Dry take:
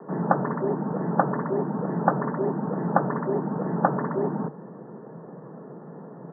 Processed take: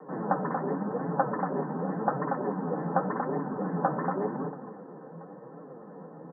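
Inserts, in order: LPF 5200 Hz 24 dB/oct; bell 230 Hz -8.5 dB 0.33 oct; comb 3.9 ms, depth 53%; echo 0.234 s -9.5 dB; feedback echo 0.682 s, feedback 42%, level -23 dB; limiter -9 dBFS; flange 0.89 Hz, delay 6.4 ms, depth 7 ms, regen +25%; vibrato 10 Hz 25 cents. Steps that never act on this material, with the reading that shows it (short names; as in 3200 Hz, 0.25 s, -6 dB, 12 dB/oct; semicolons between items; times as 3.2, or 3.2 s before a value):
LPF 5200 Hz: input band ends at 1800 Hz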